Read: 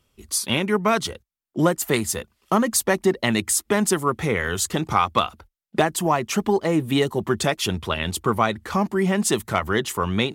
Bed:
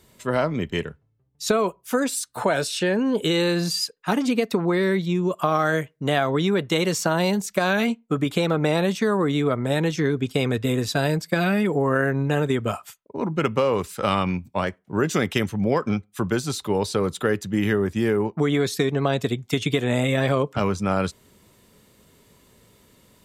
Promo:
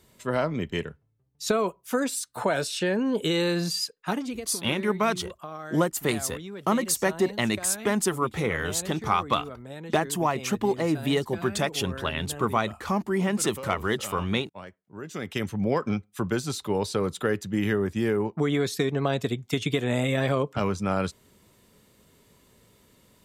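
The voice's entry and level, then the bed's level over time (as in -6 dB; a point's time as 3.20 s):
4.15 s, -4.5 dB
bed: 4.05 s -3.5 dB
4.51 s -17.5 dB
15.00 s -17.5 dB
15.50 s -3.5 dB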